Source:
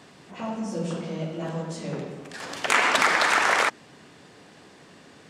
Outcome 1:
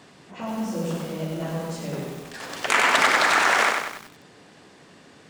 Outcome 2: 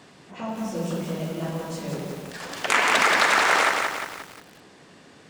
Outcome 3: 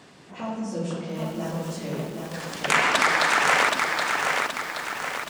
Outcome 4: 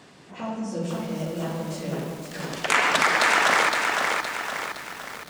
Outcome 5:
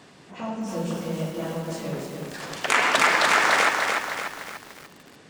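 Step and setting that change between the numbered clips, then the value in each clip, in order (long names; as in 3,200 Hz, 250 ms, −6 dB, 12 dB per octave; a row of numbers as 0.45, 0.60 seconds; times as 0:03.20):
feedback echo at a low word length, delay time: 95, 177, 774, 515, 294 milliseconds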